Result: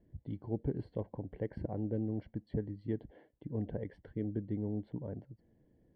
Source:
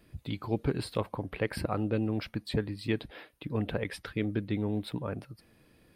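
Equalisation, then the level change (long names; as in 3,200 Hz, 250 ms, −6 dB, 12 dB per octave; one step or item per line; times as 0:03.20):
moving average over 35 samples
high-frequency loss of the air 77 metres
−4.5 dB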